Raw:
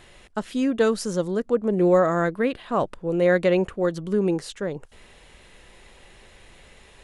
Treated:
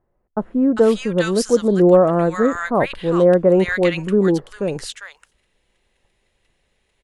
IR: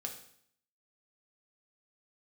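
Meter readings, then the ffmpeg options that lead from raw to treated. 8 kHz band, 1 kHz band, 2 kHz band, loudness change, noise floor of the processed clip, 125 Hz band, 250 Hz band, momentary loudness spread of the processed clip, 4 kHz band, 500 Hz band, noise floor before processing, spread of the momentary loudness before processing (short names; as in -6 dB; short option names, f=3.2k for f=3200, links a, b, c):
n/a, +4.5 dB, +5.0 dB, +6.5 dB, -68 dBFS, +6.5 dB, +6.5 dB, 13 LU, +6.0 dB, +6.0 dB, -51 dBFS, 12 LU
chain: -filter_complex "[0:a]agate=range=-23dB:threshold=-44dB:ratio=16:detection=peak,acrossover=split=1200[a][b];[b]adelay=400[c];[a][c]amix=inputs=2:normalize=0,volume=6.5dB"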